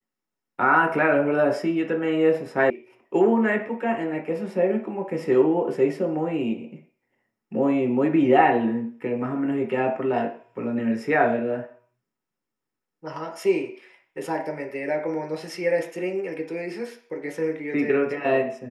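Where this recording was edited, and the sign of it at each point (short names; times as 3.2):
2.7 sound cut off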